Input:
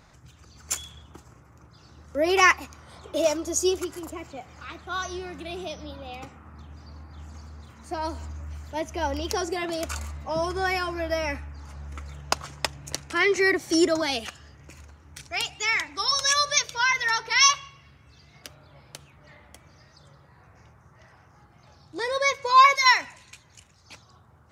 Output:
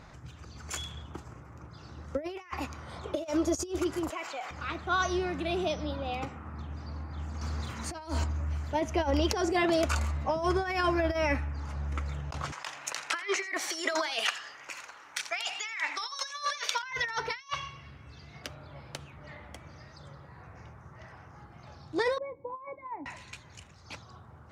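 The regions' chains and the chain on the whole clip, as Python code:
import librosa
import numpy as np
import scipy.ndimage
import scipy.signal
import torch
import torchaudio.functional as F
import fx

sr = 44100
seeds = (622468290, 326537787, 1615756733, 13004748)

y = fx.chain(x, sr, fx.highpass(hz=880.0, slope=12),
    fx.env_flatten(amount_pct=70), at=(4.1, 4.51))
y = fx.chain(y, sr, fx.high_shelf(hz=2400.0, db=9.5),
    fx.over_compress(threshold_db=-36.0, ratio=-0.5), at=(7.41, 8.24))
y = fx.chain(y, sr, fx.highpass(hz=1000.0, slope=12),
    fx.over_compress(threshold_db=-37.0, ratio=-1.0),
    fx.echo_single(ms=85, db=-17.0), at=(12.52, 16.83))
y = fx.chain(y, sr, fx.over_compress(threshold_db=-17.0, ratio=-0.5),
    fx.formant_cascade(vowel='u'), at=(22.18, 23.06))
y = fx.over_compress(y, sr, threshold_db=-29.0, ratio=-0.5)
y = fx.lowpass(y, sr, hz=3200.0, slope=6)
y = y * librosa.db_to_amplitude(1.5)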